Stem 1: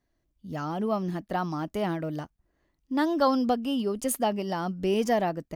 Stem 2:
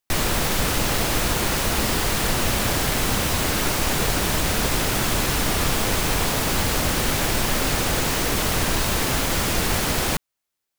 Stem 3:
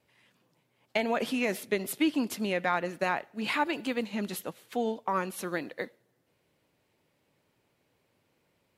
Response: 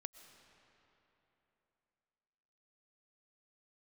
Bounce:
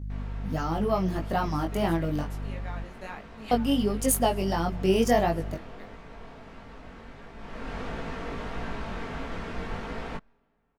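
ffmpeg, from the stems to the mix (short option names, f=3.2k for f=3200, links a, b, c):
-filter_complex "[0:a]aeval=exprs='val(0)+0.0141*(sin(2*PI*50*n/s)+sin(2*PI*2*50*n/s)/2+sin(2*PI*3*50*n/s)/3+sin(2*PI*4*50*n/s)/4+sin(2*PI*5*50*n/s)/5)':c=same,volume=3dB,asplit=3[a][b][c];[a]atrim=end=2.84,asetpts=PTS-STARTPTS,afade=t=out:st=2.836:d=0.004:c=hsin[d];[b]atrim=start=2.84:end=3.51,asetpts=PTS-STARTPTS,volume=0[e];[c]atrim=start=3.51,asetpts=PTS-STARTPTS,afade=t=in:d=0.004:c=hsin[f];[d][e][f]concat=n=3:v=0:a=1,asplit=3[g][h][i];[h]volume=-6.5dB[j];[1:a]lowpass=1.8k,aecho=1:1:4.4:0.41,volume=-9dB,afade=t=in:st=7.36:d=0.42:silence=0.281838,asplit=2[k][l];[l]volume=-18dB[m];[2:a]volume=-10.5dB,asplit=2[n][o];[o]volume=-8dB[p];[i]apad=whole_len=387147[q];[n][q]sidechaincompress=threshold=-37dB:ratio=8:attack=16:release=551[r];[3:a]atrim=start_sample=2205[s];[j][m][p]amix=inputs=3:normalize=0[t];[t][s]afir=irnorm=-1:irlink=0[u];[g][k][r][u]amix=inputs=4:normalize=0,highshelf=f=5k:g=5,flanger=delay=18:depth=3.7:speed=1.5"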